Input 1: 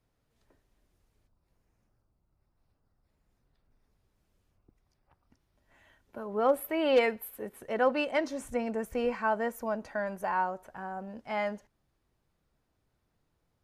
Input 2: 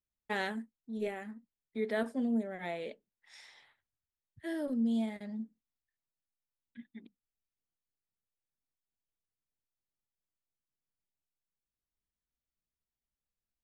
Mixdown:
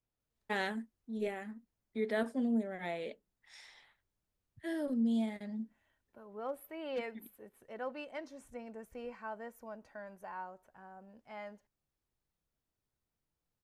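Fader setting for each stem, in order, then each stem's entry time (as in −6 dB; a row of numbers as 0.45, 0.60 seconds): −14.5, −0.5 decibels; 0.00, 0.20 seconds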